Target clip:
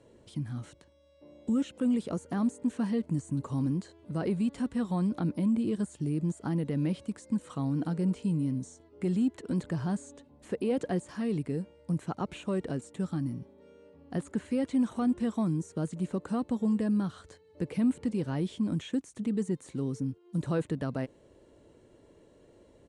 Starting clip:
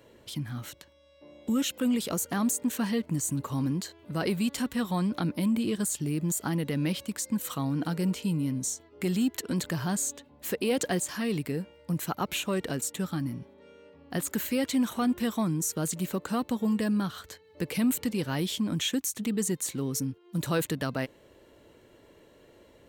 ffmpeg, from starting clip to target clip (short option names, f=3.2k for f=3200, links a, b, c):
-filter_complex "[0:a]acrossover=split=2900[a][b];[b]acompressor=threshold=-48dB:ratio=4:attack=1:release=60[c];[a][c]amix=inputs=2:normalize=0,equalizer=f=2.4k:t=o:w=2.9:g=-9.5,aresample=22050,aresample=44100"